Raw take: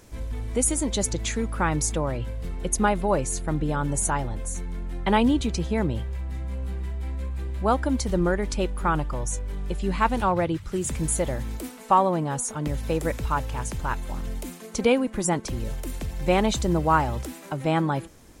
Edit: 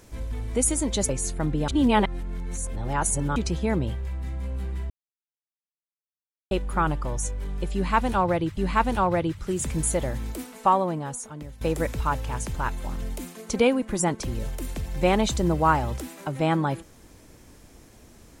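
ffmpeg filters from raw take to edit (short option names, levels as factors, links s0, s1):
-filter_complex "[0:a]asplit=8[s0][s1][s2][s3][s4][s5][s6][s7];[s0]atrim=end=1.092[s8];[s1]atrim=start=3.168:end=3.762[s9];[s2]atrim=start=3.758:end=5.442,asetpts=PTS-STARTPTS,areverse[s10];[s3]atrim=start=5.438:end=6.98,asetpts=PTS-STARTPTS,afade=t=out:st=1.538:d=0.004:c=hsin[s11];[s4]atrim=start=6.98:end=8.59,asetpts=PTS-STARTPTS,volume=0[s12];[s5]atrim=start=8.59:end=10.652,asetpts=PTS-STARTPTS,afade=t=in:d=0.004:c=hsin[s13];[s6]atrim=start=9.818:end=12.86,asetpts=PTS-STARTPTS,afade=t=out:st=1.982:d=1.06:silence=0.141254[s14];[s7]atrim=start=12.86,asetpts=PTS-STARTPTS,afade=t=in:d=0.004:c=hsin:silence=0.141254[s15];[s8][s9]acrossfade=d=0.004:c1=hsin:c2=hsin[s16];[s16][s10]acrossfade=d=0.004:c1=hsin:c2=hsin[s17];[s11][s12][s13]concat=n=3:v=0:a=1[s18];[s17][s18]acrossfade=d=0.004:c1=hsin:c2=hsin[s19];[s14][s15]concat=n=2:v=0:a=1[s20];[s19][s20]acrossfade=d=0.004:c1=hsin:c2=hsin"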